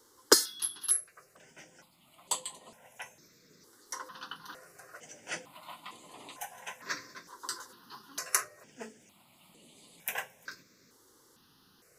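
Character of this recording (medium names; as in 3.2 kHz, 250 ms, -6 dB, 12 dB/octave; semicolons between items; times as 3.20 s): notches that jump at a steady rate 2.2 Hz 670–5500 Hz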